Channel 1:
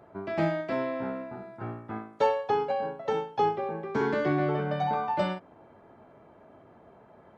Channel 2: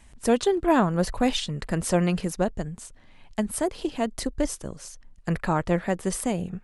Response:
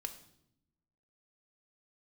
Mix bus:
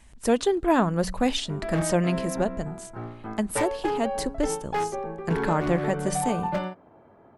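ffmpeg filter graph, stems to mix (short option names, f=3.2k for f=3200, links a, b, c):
-filter_complex "[0:a]highshelf=f=2.9k:g=-8.5,aeval=exprs='0.0944*(abs(mod(val(0)/0.0944+3,4)-2)-1)':c=same,adelay=1350,volume=0.5dB[a];[1:a]bandreject=f=92.54:t=h:w=4,bandreject=f=185.08:t=h:w=4,bandreject=f=277.62:t=h:w=4,volume=-1dB,asplit=3[b][c][d];[c]volume=-24dB[e];[d]apad=whole_len=384943[f];[a][f]sidechaincompress=threshold=-25dB:ratio=8:attack=42:release=172[g];[2:a]atrim=start_sample=2205[h];[e][h]afir=irnorm=-1:irlink=0[i];[g][b][i]amix=inputs=3:normalize=0"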